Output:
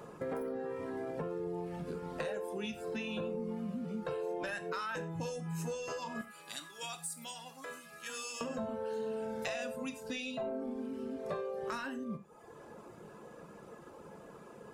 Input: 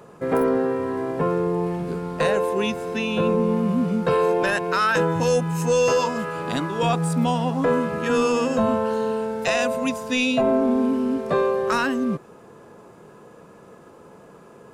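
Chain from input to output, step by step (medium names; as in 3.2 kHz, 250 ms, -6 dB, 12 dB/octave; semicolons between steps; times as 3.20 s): reverb removal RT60 0.86 s; 6.21–8.41 s: pre-emphasis filter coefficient 0.97; compression 6:1, threshold -34 dBFS, peak gain reduction 15.5 dB; gated-style reverb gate 140 ms falling, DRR 7 dB; trim -3.5 dB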